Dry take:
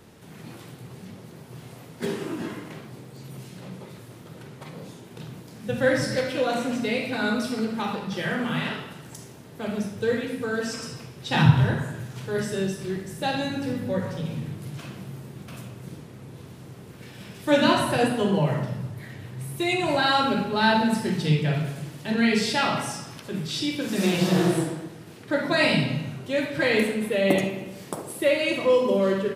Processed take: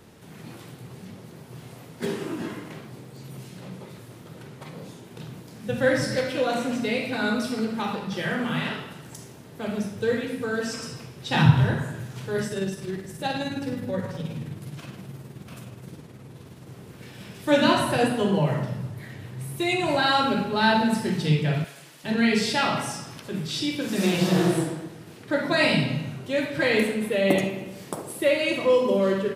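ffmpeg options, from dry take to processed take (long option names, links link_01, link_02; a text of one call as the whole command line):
ffmpeg -i in.wav -filter_complex "[0:a]asettb=1/sr,asplit=3[link_01][link_02][link_03];[link_01]atrim=end=12.474[link_04];[link_02]atrim=start=12.47:end=16.67,asetpts=PTS-STARTPTS,afade=type=in:duration=0.004:curve=qsin,afade=type=out:start_time=4.196:duration=0.004:curve=qsin,tremolo=f=19:d=0.4[link_05];[link_03]atrim=start=16.666[link_06];[link_04][link_05]acrossfade=duration=0.004:curve1=hsin:curve2=qsin[link_07];[link_07][link_06]acrossfade=duration=0.004:curve1=qsin:curve2=hsin,asettb=1/sr,asplit=3[link_08][link_09][link_10];[link_08]atrim=end=21.644[link_11];[link_09]atrim=start=21.64:end=22.04,asetpts=PTS-STARTPTS,afade=type=in:duration=0.004:curve=qsin,afade=type=out:start_time=0.396:duration=0.004:curve=qsin,highpass=frequency=1300:poles=1[link_12];[link_10]atrim=start=22.036[link_13];[link_11][link_12]acrossfade=duration=0.004:curve1=hsin:curve2=qsin[link_14];[link_14][link_13]acrossfade=duration=0.004:curve1=qsin:curve2=hsin" out.wav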